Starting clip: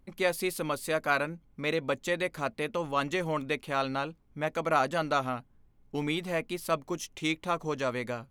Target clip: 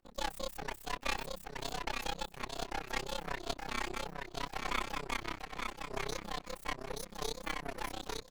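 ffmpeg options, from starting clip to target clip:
-af "asetrate=78577,aresample=44100,atempo=0.561231,highpass=180,bandreject=f=60:t=h:w=6,bandreject=f=120:t=h:w=6,bandreject=f=180:t=h:w=6,bandreject=f=240:t=h:w=6,bandreject=f=300:t=h:w=6,bandreject=f=360:t=h:w=6,aecho=1:1:872|1744|2616:0.631|0.139|0.0305,areverse,acompressor=mode=upward:threshold=-31dB:ratio=2.5,areverse,afreqshift=-120,aeval=exprs='max(val(0),0)':c=same,tremolo=f=32:d=0.974,volume=-1.5dB"

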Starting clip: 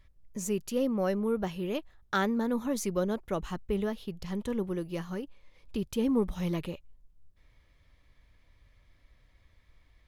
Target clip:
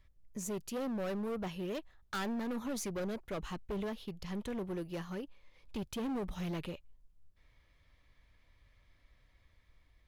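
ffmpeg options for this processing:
-filter_complex "[0:a]acrossover=split=660|5700[a][b][c];[b]dynaudnorm=f=470:g=5:m=3dB[d];[a][d][c]amix=inputs=3:normalize=0,volume=29.5dB,asoftclip=hard,volume=-29.5dB,volume=-4.5dB"

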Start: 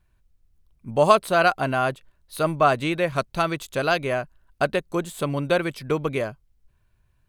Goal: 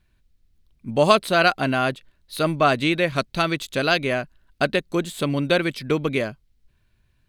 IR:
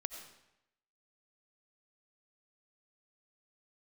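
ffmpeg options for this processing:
-af "equalizer=f=250:t=o:w=1:g=6,equalizer=f=1k:t=o:w=1:g=-3,equalizer=f=2k:t=o:w=1:g=4,equalizer=f=4k:t=o:w=1:g=7"

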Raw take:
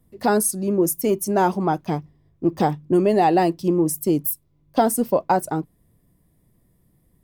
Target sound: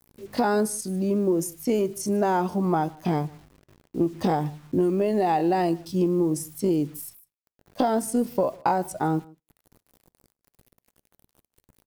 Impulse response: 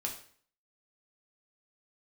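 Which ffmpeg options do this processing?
-filter_complex "[0:a]atempo=0.61,acompressor=threshold=-19dB:ratio=20,acrusher=bits=8:mix=0:aa=0.000001,asplit=2[a][b];[b]adelay=151.6,volume=-24dB,highshelf=f=4k:g=-3.41[c];[a][c]amix=inputs=2:normalize=0,acrossover=split=8200[d][e];[e]acompressor=threshold=-43dB:ratio=4:attack=1:release=60[f];[d][f]amix=inputs=2:normalize=0,asplit=2[g][h];[1:a]atrim=start_sample=2205,asetrate=74970,aresample=44100[i];[h][i]afir=irnorm=-1:irlink=0,volume=-18dB[j];[g][j]amix=inputs=2:normalize=0"

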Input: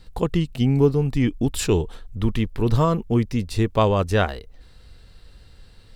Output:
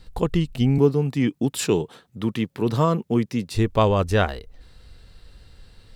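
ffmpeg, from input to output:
-filter_complex "[0:a]asettb=1/sr,asplit=3[a][b][c];[a]atrim=end=0.784[d];[b]atrim=start=0.78:end=3.55,asetpts=PTS-STARTPTS,afade=t=in:d=0.004:c=qsin,afade=t=out:st=2.766:d=0.004:c=qsin,highpass=f=130:w=0.5412,highpass=f=130:w=1.3066[e];[c]atrim=start=3.546[f];[d][e]acrossfade=d=0.004:c1=hsin:c2=qsin[g];[g][f]acrossfade=d=0.004:c1=qsin:c2=hsin"

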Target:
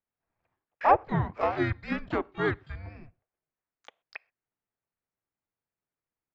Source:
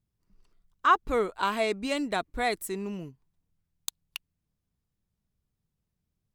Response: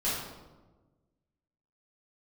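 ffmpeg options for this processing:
-filter_complex "[0:a]highpass=f=420:t=q:w=0.5412,highpass=f=420:t=q:w=1.307,lowpass=f=2.7k:t=q:w=0.5176,lowpass=f=2.7k:t=q:w=0.7071,lowpass=f=2.7k:t=q:w=1.932,afreqshift=-310,asplit=2[a][b];[1:a]atrim=start_sample=2205,afade=t=out:st=0.18:d=0.01,atrim=end_sample=8379,highshelf=f=6.3k:g=-6[c];[b][c]afir=irnorm=-1:irlink=0,volume=-31.5dB[d];[a][d]amix=inputs=2:normalize=0,asplit=3[e][f][g];[f]asetrate=33038,aresample=44100,atempo=1.33484,volume=-6dB[h];[g]asetrate=88200,aresample=44100,atempo=0.5,volume=-15dB[i];[e][h][i]amix=inputs=3:normalize=0"

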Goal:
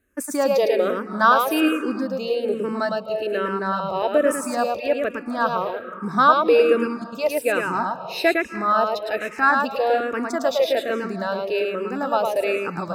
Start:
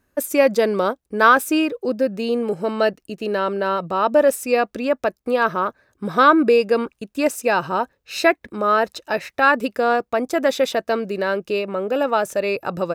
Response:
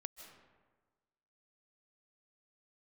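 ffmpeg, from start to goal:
-filter_complex "[0:a]asplit=2[a][b];[1:a]atrim=start_sample=2205,adelay=108[c];[b][c]afir=irnorm=-1:irlink=0,volume=1.5dB[d];[a][d]amix=inputs=2:normalize=0,asplit=2[e][f];[f]afreqshift=-1.2[g];[e][g]amix=inputs=2:normalize=1,volume=-1dB"

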